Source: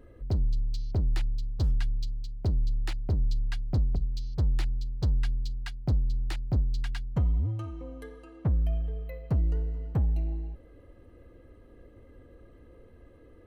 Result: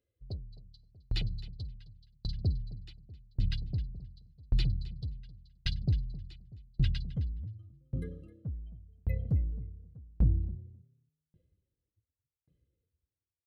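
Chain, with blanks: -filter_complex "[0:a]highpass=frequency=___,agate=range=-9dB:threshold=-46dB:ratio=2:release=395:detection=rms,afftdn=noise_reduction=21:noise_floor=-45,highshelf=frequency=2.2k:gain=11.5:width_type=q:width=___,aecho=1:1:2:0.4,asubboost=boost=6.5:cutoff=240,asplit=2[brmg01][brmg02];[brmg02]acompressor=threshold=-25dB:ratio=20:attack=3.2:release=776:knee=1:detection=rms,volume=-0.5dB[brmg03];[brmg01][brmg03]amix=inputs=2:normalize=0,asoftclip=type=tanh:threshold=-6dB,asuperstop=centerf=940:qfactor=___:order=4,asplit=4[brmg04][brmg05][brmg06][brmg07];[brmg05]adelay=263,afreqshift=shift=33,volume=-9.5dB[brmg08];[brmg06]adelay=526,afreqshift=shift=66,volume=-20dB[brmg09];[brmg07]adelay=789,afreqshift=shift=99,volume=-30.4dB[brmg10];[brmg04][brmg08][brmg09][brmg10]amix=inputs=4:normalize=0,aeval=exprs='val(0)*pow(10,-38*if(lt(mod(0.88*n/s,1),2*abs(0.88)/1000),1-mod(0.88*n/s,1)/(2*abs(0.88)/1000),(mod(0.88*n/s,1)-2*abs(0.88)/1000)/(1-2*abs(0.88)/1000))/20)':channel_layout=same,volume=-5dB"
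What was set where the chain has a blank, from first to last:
85, 1.5, 5.9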